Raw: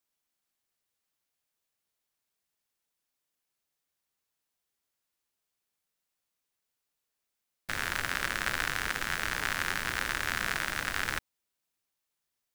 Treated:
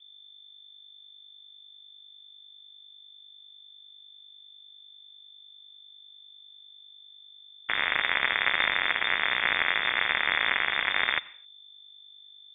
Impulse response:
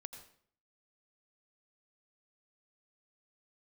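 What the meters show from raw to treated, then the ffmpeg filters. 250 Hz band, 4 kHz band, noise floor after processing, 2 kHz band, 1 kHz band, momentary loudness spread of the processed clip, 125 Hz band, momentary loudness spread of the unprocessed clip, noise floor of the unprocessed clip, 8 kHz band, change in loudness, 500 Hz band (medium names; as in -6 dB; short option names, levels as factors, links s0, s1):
-2.0 dB, +8.5 dB, -52 dBFS, +6.5 dB, +4.5 dB, 4 LU, -8.0 dB, 4 LU, -85 dBFS, under -40 dB, +6.5 dB, +4.0 dB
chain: -filter_complex "[0:a]equalizer=f=125:t=o:w=1:g=-5,equalizer=f=250:t=o:w=1:g=8,equalizer=f=500:t=o:w=1:g=-9,aeval=exprs='val(0)+0.00126*(sin(2*PI*50*n/s)+sin(2*PI*2*50*n/s)/2+sin(2*PI*3*50*n/s)/3+sin(2*PI*4*50*n/s)/4+sin(2*PI*5*50*n/s)/5)':c=same,asplit=2[s0][s1];[1:a]atrim=start_sample=2205,afade=t=out:st=0.32:d=0.01,atrim=end_sample=14553[s2];[s1][s2]afir=irnorm=-1:irlink=0,volume=0.473[s3];[s0][s3]amix=inputs=2:normalize=0,lowpass=f=3100:t=q:w=0.5098,lowpass=f=3100:t=q:w=0.6013,lowpass=f=3100:t=q:w=0.9,lowpass=f=3100:t=q:w=2.563,afreqshift=-3600,volume=1.78"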